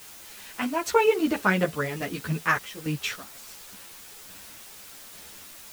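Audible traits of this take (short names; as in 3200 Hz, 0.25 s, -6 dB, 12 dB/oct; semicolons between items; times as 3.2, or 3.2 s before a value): random-step tremolo, depth 90%; a quantiser's noise floor 8-bit, dither triangular; a shimmering, thickened sound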